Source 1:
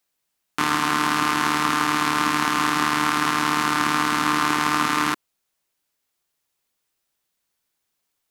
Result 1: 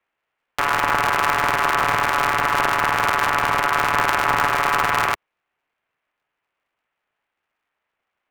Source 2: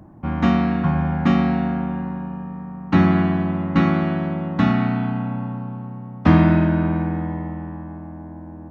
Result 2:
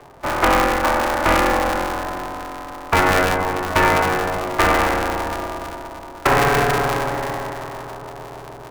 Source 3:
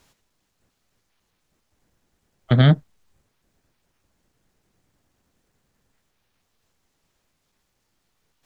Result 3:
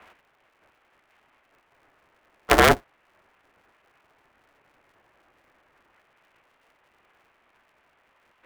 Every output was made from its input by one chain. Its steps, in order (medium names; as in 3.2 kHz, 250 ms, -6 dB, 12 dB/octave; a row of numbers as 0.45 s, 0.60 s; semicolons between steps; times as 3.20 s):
peaking EQ 370 Hz -14.5 dB 0.69 oct; peak limiter -11 dBFS; distance through air 210 m; mistuned SSB -51 Hz 330–2800 Hz; polarity switched at an audio rate 140 Hz; normalise loudness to -19 LUFS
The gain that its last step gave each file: +9.5 dB, +13.5 dB, +17.0 dB